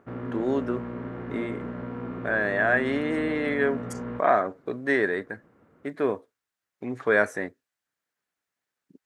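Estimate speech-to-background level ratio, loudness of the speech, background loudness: 9.0 dB, −26.5 LKFS, −35.5 LKFS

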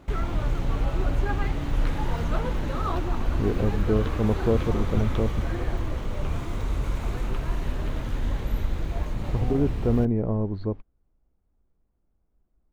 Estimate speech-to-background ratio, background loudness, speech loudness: 3.0 dB, −30.0 LKFS, −27.0 LKFS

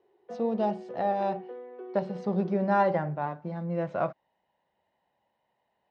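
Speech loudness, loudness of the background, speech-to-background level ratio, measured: −30.0 LKFS, −43.5 LKFS, 13.5 dB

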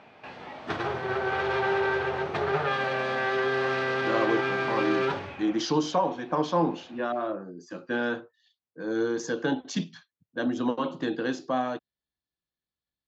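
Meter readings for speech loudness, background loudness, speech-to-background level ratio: −29.5 LKFS, −27.5 LKFS, −2.0 dB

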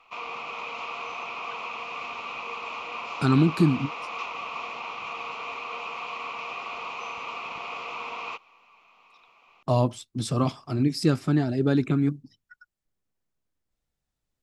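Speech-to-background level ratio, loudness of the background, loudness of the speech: 10.0 dB, −34.5 LKFS, −24.5 LKFS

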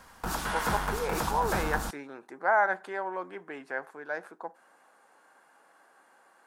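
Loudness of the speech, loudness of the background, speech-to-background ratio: −32.0 LKFS, −32.5 LKFS, 0.5 dB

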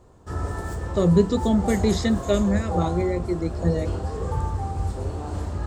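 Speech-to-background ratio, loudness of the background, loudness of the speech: 6.0 dB, −29.5 LKFS, −23.5 LKFS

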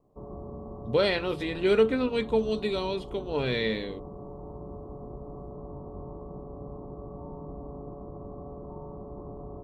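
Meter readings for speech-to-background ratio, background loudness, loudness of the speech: 14.5 dB, −42.0 LKFS, −27.5 LKFS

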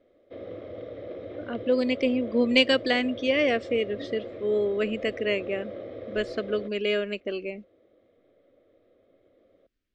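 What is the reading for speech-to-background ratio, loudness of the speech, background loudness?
13.0 dB, −26.5 LKFS, −39.5 LKFS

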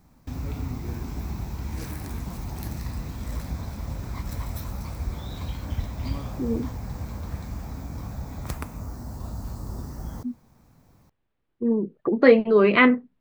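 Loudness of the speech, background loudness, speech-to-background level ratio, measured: −20.0 LKFS, −34.5 LKFS, 14.5 dB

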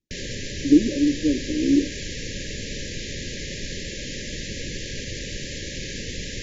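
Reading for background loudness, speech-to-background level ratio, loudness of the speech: −32.0 LKFS, 11.0 dB, −21.0 LKFS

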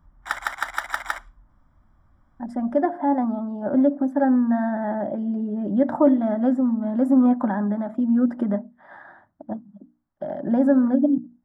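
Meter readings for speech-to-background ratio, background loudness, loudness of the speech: 7.0 dB, −29.0 LKFS, −22.0 LKFS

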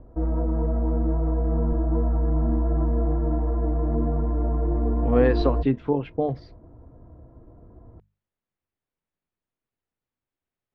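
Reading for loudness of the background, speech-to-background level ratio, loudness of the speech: −25.0 LKFS, 0.5 dB, −24.5 LKFS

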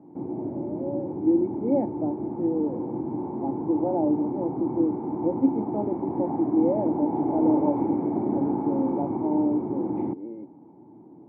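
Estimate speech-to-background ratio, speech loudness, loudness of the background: 1.5 dB, −28.0 LKFS, −29.5 LKFS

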